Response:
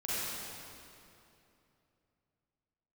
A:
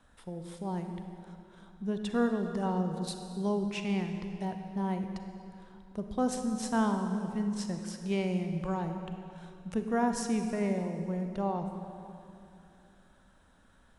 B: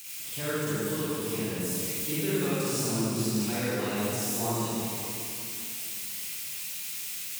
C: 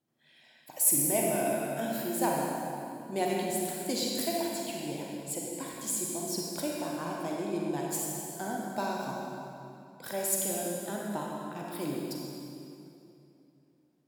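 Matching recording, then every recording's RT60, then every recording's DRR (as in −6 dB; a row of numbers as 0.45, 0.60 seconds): B; 2.8, 2.8, 2.8 seconds; 5.5, −11.0, −2.5 decibels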